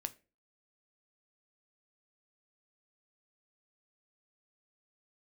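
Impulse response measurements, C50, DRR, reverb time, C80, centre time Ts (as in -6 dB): 20.5 dB, 9.5 dB, 0.35 s, 25.5 dB, 3 ms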